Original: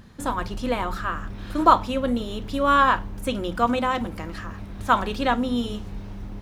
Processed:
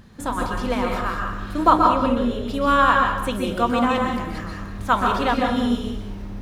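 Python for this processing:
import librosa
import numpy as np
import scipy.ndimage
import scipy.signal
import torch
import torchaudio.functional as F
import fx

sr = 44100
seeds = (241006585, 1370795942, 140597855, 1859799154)

y = fx.high_shelf(x, sr, hz=4100.0, db=-7.5, at=(1.7, 2.48))
y = y + 10.0 ** (-12.0 / 20.0) * np.pad(y, (int(193 * sr / 1000.0), 0))[:len(y)]
y = fx.rev_plate(y, sr, seeds[0], rt60_s=0.6, hf_ratio=0.9, predelay_ms=115, drr_db=0.5)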